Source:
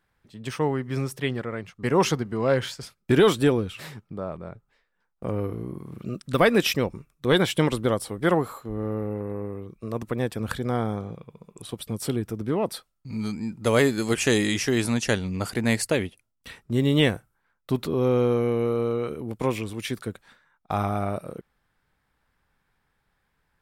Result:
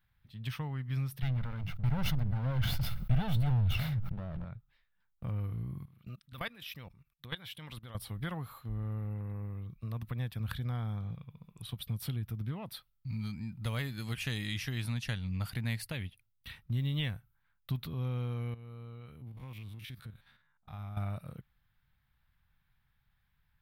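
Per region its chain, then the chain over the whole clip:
1.22–4.45 s: comb filter that takes the minimum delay 1.4 ms + tilt shelf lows +6.5 dB, about 1.1 kHz + decay stretcher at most 25 dB/s
5.85–7.95 s: bass shelf 270 Hz -8.5 dB + level held to a coarse grid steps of 19 dB
18.54–20.97 s: spectrogram pixelated in time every 50 ms + compression 2.5:1, threshold -42 dBFS + tape noise reduction on one side only decoder only
whole clip: compression 2:1, threshold -31 dBFS; FFT filter 130 Hz 0 dB, 390 Hz -22 dB, 770 Hz -13 dB, 3.7 kHz -4 dB, 7.4 kHz -20 dB, 14 kHz 0 dB; trim +1.5 dB

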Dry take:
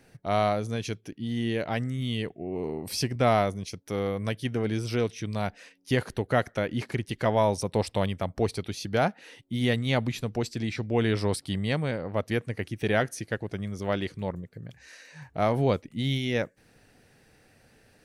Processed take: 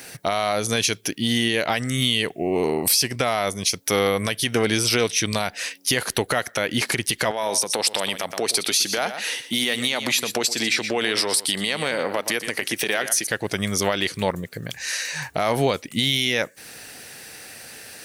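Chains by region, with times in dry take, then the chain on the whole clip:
7.31–13.27 s: high-pass 240 Hz + compression 8:1, threshold -31 dBFS + delay 119 ms -12.5 dB
whole clip: tilt EQ +3.5 dB/octave; compression 2.5:1, threshold -35 dBFS; loudness maximiser +24.5 dB; trim -7.5 dB

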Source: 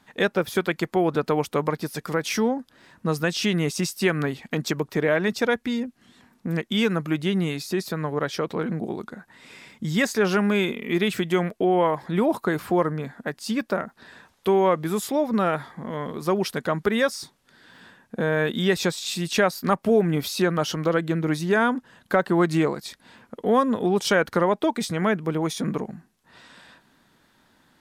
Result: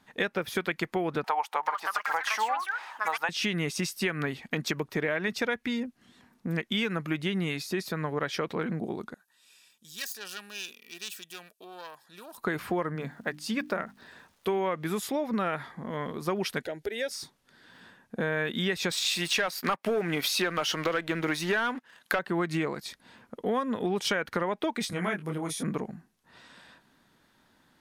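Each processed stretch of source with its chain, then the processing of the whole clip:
1.24–3.29 s: upward compressor, threshold -38 dBFS + resonant high-pass 840 Hz, resonance Q 8.4 + ever faster or slower copies 393 ms, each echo +5 st, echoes 2, each echo -6 dB
9.14–12.38 s: self-modulated delay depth 0.13 ms + Butterworth band-stop 2.1 kHz, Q 5.8 + pre-emphasis filter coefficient 0.97
12.95–14.57 s: hum notches 50/100/150/200/250/300 Hz + crackle 400 per s -52 dBFS
16.62–17.11 s: compression 1.5:1, threshold -30 dBFS + static phaser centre 470 Hz, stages 4
18.91–22.19 s: high-pass 500 Hz 6 dB/octave + waveshaping leveller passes 2 + tape noise reduction on one side only encoder only
24.90–25.63 s: peaking EQ 10 kHz +12.5 dB 0.68 oct + detune thickener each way 29 cents
whole clip: band-stop 7.6 kHz, Q 24; dynamic bell 2.2 kHz, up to +7 dB, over -41 dBFS, Q 0.99; compression, threshold -21 dBFS; trim -4 dB

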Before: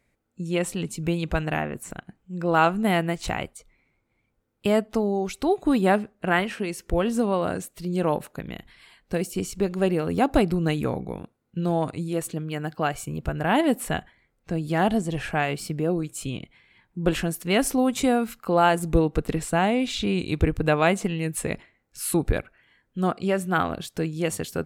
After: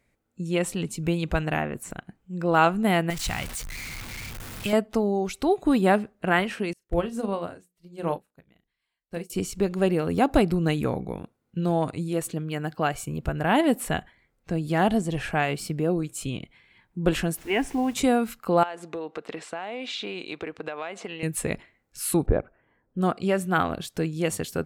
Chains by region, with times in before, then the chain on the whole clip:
3.10–4.73 s: jump at every zero crossing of -28.5 dBFS + peaking EQ 430 Hz -11.5 dB 2.2 oct
6.73–9.30 s: hum notches 60/120/180/240/300/360/420/480 Hz + doubling 35 ms -11 dB + upward expansion 2.5:1, over -39 dBFS
17.36–17.93 s: low-pass 4.8 kHz + static phaser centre 850 Hz, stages 8 + added noise pink -50 dBFS
18.63–21.23 s: band-pass 460–4500 Hz + compression 10:1, threshold -28 dBFS
22.26–23.01 s: Bessel low-pass 890 Hz + peaking EQ 630 Hz +5.5 dB 2.1 oct
whole clip: none

